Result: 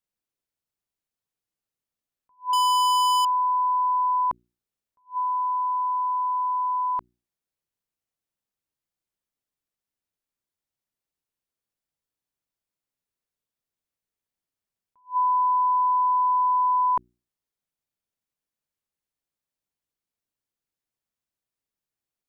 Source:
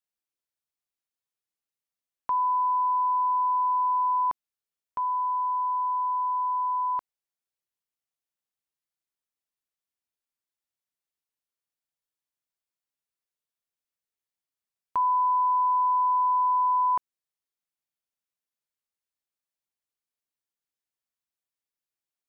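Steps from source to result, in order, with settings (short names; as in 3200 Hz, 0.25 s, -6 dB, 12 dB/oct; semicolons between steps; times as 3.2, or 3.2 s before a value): low shelf 480 Hz +9.5 dB; notches 60/120/180/240/300/360 Hz; 2.53–3.25 sample leveller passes 5; attack slew limiter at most 310 dB/s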